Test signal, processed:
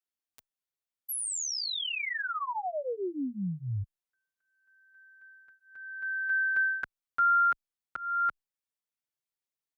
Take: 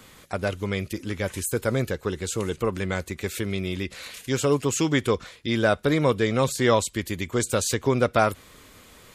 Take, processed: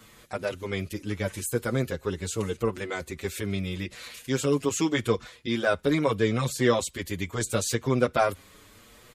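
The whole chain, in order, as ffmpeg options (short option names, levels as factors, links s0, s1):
-filter_complex "[0:a]asplit=2[s0][s1];[s1]adelay=6.6,afreqshift=0.8[s2];[s0][s2]amix=inputs=2:normalize=1"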